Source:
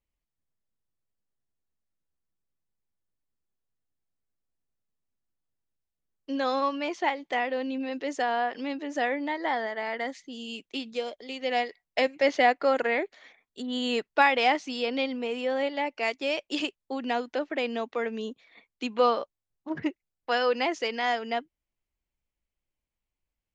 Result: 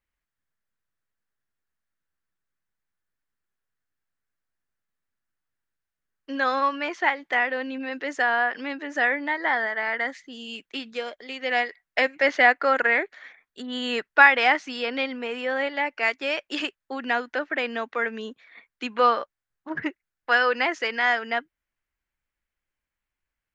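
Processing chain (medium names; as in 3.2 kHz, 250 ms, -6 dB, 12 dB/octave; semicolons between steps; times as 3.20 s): peaking EQ 1.6 kHz +13.5 dB 1.1 oct; trim -1.5 dB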